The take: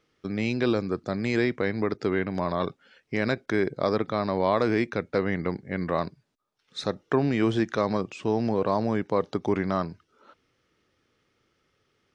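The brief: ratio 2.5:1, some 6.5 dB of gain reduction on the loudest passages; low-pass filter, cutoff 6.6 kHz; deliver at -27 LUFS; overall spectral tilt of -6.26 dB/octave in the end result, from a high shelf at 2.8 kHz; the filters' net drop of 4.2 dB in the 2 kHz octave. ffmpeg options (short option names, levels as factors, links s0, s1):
-af "lowpass=6600,equalizer=f=2000:t=o:g=-3.5,highshelf=f=2800:g=-4.5,acompressor=threshold=0.0355:ratio=2.5,volume=2"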